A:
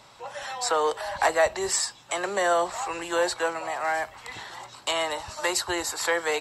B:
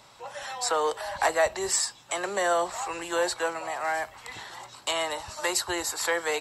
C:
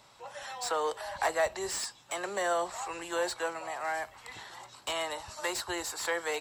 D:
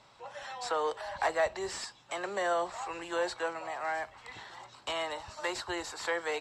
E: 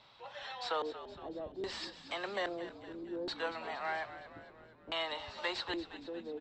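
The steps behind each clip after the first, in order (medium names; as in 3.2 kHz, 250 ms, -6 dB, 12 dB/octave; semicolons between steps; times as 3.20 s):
treble shelf 8.7 kHz +5.5 dB; trim -2 dB
slew-rate limiter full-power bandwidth 260 Hz; trim -5 dB
distance through air 79 m
LFO low-pass square 0.61 Hz 300–3800 Hz; frequency-shifting echo 233 ms, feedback 58%, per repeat -54 Hz, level -13 dB; trim -4 dB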